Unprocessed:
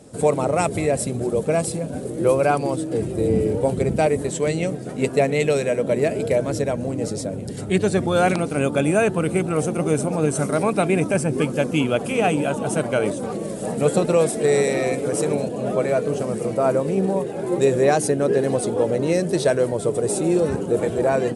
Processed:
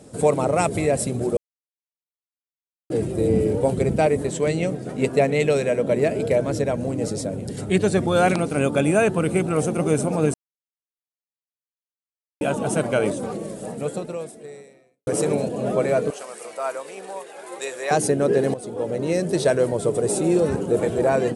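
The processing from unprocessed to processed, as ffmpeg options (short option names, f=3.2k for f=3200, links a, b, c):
-filter_complex "[0:a]asettb=1/sr,asplit=3[a][b][c];[a]atrim=end=3.954[d];[b]atrim=start=3.95:end=6.74,asetpts=PTS-STARTPTS,afade=t=in:d=0.004:c=qsin,afade=t=out:st=2.786:d=0.004:c=qsin,highshelf=f=6k:g=-4.5[e];[c]atrim=start=6.736[f];[d][e]acrossfade=d=0.004:c1=hsin:c2=qsin[g];[g][f]acrossfade=d=0.004:c1=qsin:c2=hsin,asettb=1/sr,asplit=3[h][i][j];[h]atrim=end=16.104[k];[i]atrim=start=16.1:end=17.91,asetpts=PTS-STARTPTS,afade=t=in:d=0.004:c=qsin,afade=t=out:st=1.806:d=0.004:c=qsin,highpass=1k[l];[j]atrim=start=17.906[m];[k][l]acrossfade=d=0.004:c1=hsin:c2=qsin[n];[n][m]acrossfade=d=0.004:c1=qsin:c2=hsin,asplit=7[o][p][q][r][s][t][u];[o]atrim=end=1.37,asetpts=PTS-STARTPTS,afade=t=out:st=1.366:d=0.004:c=hsin[v];[p]atrim=start=1.37:end=2.9,asetpts=PTS-STARTPTS,volume=0[w];[q]atrim=start=2.9:end=10.34,asetpts=PTS-STARTPTS,afade=t=in:d=0.004:c=hsin,afade=t=out:st=7.436:d=0.004:c=hsin[x];[r]atrim=start=10.34:end=12.41,asetpts=PTS-STARTPTS,volume=0[y];[s]atrim=start=12.41:end=15.07,asetpts=PTS-STARTPTS,afade=t=in:d=0.004:c=hsin,afade=t=out:st=0.71:d=1.95:c=qua[z];[t]atrim=start=15.07:end=18.54,asetpts=PTS-STARTPTS,afade=t=in:d=0.004:c=hsin,afade=t=out:st=3.466:d=0.004:c=hsin:silence=0.188365[aa];[u]atrim=start=18.54,asetpts=PTS-STARTPTS,afade=t=in:d=1.18:c=qsin:silence=0.188365[ab];[v][w][x][y][z][aa][ab]concat=n=7:v=0:a=1"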